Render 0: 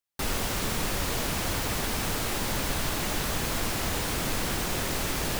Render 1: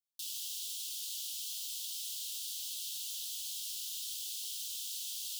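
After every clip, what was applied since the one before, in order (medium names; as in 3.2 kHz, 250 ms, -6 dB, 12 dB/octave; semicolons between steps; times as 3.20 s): steep high-pass 3 kHz 72 dB/octave; trim -6 dB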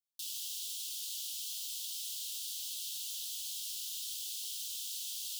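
no audible change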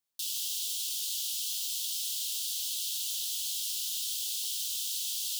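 bit-crushed delay 178 ms, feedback 35%, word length 10-bit, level -14 dB; trim +6.5 dB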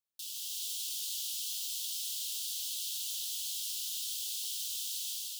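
level rider gain up to 4.5 dB; trim -8 dB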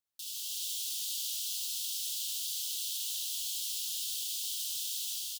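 delay 72 ms -4.5 dB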